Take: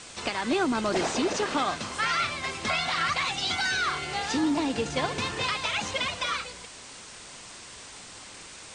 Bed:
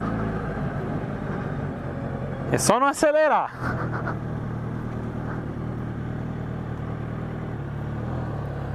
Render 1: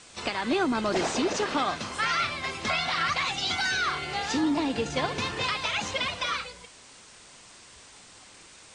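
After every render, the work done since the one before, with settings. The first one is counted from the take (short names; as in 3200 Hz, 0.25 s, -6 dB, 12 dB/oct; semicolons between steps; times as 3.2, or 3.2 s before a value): noise print and reduce 6 dB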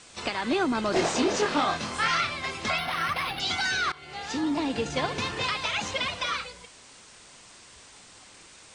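0.91–2.21 doubler 24 ms -3 dB; 2.78–3.4 decimation joined by straight lines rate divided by 6×; 3.92–4.92 fade in equal-power, from -19 dB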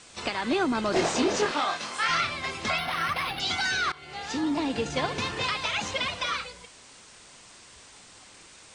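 1.51–2.09 HPF 660 Hz 6 dB/oct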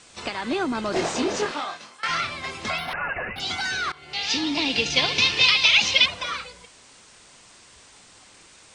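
1.43–2.03 fade out, to -20.5 dB; 2.93–3.36 inverted band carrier 2800 Hz; 4.13–6.06 band shelf 3600 Hz +14.5 dB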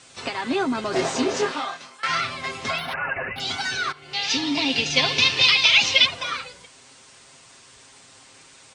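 HPF 42 Hz; comb 7.5 ms, depth 56%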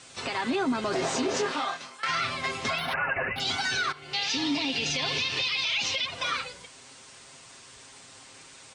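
compressor 4:1, threshold -21 dBFS, peak gain reduction 8.5 dB; limiter -19 dBFS, peak gain reduction 9.5 dB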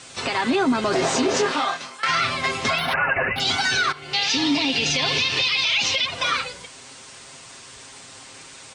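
gain +7 dB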